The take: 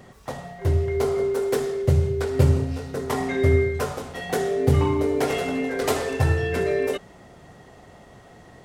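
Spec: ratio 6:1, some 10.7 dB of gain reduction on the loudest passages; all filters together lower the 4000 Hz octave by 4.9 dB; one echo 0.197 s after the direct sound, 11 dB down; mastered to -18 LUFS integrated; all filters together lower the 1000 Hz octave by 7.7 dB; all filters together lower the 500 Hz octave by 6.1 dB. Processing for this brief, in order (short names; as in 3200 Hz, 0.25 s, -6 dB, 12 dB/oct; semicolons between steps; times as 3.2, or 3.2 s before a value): bell 500 Hz -7 dB; bell 1000 Hz -7.5 dB; bell 4000 Hz -6 dB; compressor 6:1, threshold -25 dBFS; echo 0.197 s -11 dB; gain +12.5 dB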